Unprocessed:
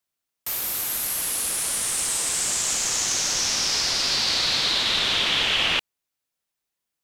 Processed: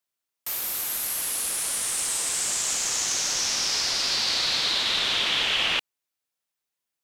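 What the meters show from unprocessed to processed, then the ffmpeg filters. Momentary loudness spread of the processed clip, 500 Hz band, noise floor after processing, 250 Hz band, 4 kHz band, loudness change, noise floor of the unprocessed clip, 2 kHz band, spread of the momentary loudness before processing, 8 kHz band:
5 LU, -3.0 dB, under -85 dBFS, -4.5 dB, -2.0 dB, -2.0 dB, -84 dBFS, -2.0 dB, 5 LU, -2.0 dB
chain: -af "lowshelf=f=260:g=-5.5,volume=-2dB"

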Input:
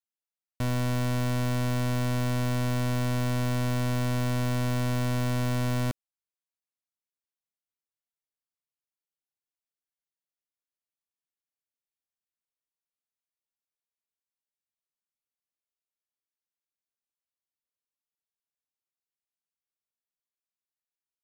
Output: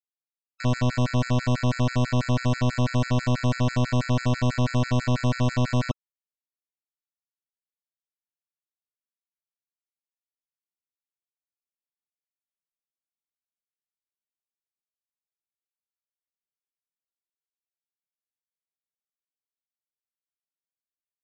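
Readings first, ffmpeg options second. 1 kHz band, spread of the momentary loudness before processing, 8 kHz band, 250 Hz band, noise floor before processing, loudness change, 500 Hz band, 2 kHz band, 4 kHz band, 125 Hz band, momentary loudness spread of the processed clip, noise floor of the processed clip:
+4.0 dB, 1 LU, -0.5 dB, +4.0 dB, under -85 dBFS, +3.5 dB, +4.0 dB, +3.5 dB, +3.5 dB, +4.0 dB, 2 LU, under -85 dBFS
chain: -af "aresample=16000,acrusher=bits=6:mix=0:aa=0.000001,aresample=44100,afftfilt=real='re*gt(sin(2*PI*6.1*pts/sr)*(1-2*mod(floor(b*sr/1024/1300),2)),0)':imag='im*gt(sin(2*PI*6.1*pts/sr)*(1-2*mod(floor(b*sr/1024/1300),2)),0)':win_size=1024:overlap=0.75,volume=7dB"

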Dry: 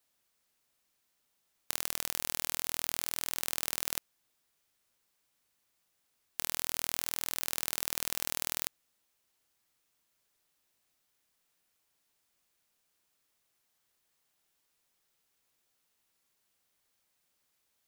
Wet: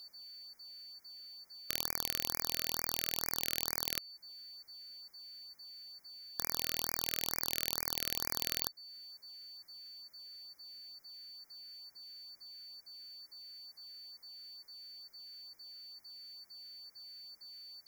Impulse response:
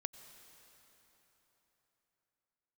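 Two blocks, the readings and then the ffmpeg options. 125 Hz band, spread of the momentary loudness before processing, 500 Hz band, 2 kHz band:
+0.5 dB, 4 LU, 0.0 dB, -2.0 dB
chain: -af "equalizer=f=8.4k:t=o:w=0.4:g=-11.5,alimiter=limit=-15.5dB:level=0:latency=1:release=328,acrusher=bits=3:mode=log:mix=0:aa=0.000001,aeval=exprs='val(0)+0.00112*sin(2*PI*4500*n/s)':c=same,afftfilt=real='re*(1-between(b*sr/1024,850*pow(3400/850,0.5+0.5*sin(2*PI*2.2*pts/sr))/1.41,850*pow(3400/850,0.5+0.5*sin(2*PI*2.2*pts/sr))*1.41))':imag='im*(1-between(b*sr/1024,850*pow(3400/850,0.5+0.5*sin(2*PI*2.2*pts/sr))/1.41,850*pow(3400/850,0.5+0.5*sin(2*PI*2.2*pts/sr))*1.41))':win_size=1024:overlap=0.75,volume=10.5dB"

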